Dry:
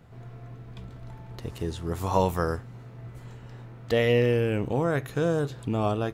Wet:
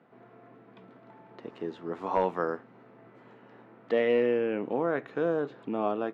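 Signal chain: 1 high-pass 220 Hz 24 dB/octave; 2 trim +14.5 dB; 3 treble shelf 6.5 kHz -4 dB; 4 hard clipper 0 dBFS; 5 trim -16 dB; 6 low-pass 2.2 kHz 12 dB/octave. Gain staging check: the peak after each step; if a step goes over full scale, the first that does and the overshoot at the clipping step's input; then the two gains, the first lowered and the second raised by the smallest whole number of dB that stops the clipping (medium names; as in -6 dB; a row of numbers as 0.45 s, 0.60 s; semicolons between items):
-9.0 dBFS, +5.5 dBFS, +5.5 dBFS, 0.0 dBFS, -16.0 dBFS, -15.5 dBFS; step 2, 5.5 dB; step 2 +8.5 dB, step 5 -10 dB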